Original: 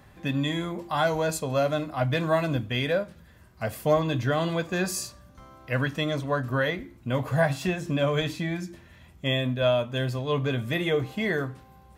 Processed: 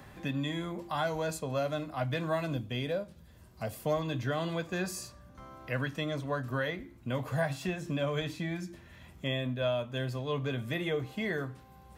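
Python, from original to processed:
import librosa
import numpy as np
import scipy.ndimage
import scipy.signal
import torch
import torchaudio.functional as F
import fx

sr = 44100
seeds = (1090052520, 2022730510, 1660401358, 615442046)

y = fx.peak_eq(x, sr, hz=1700.0, db=-7.0, octaves=1.2, at=(2.54, 3.82))
y = fx.band_squash(y, sr, depth_pct=40)
y = y * librosa.db_to_amplitude(-7.0)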